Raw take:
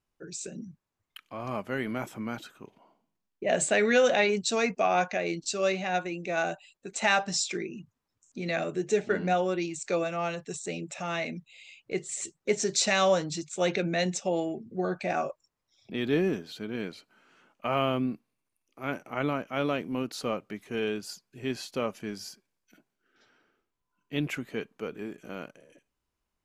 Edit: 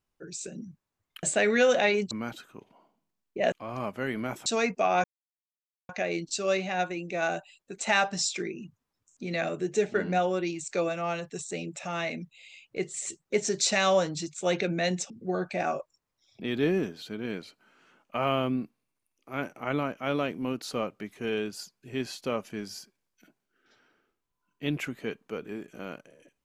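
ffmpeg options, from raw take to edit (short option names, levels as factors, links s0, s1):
-filter_complex "[0:a]asplit=7[s0][s1][s2][s3][s4][s5][s6];[s0]atrim=end=1.232[s7];[s1]atrim=start=3.578:end=4.462[s8];[s2]atrim=start=2.168:end=3.582[s9];[s3]atrim=start=1.228:end=2.172[s10];[s4]atrim=start=4.458:end=5.04,asetpts=PTS-STARTPTS,afade=t=out:st=0.578:d=0.004:c=hsin,apad=pad_dur=0.85[s11];[s5]atrim=start=5.04:end=14.252,asetpts=PTS-STARTPTS,afade=t=in:d=0.004:c=hsin[s12];[s6]atrim=start=14.598[s13];[s7][s8]acrossfade=d=0.004:c1=hsin:c2=hsin[s14];[s14][s9]acrossfade=d=0.004:c1=hsin:c2=hsin[s15];[s15][s10]acrossfade=d=0.004:c1=hsin:c2=hsin[s16];[s11][s12]concat=n=2:v=0:a=1[s17];[s16][s17]acrossfade=d=0.004:c1=hsin:c2=hsin[s18];[s18][s13]acrossfade=d=0.004:c1=hsin:c2=hsin"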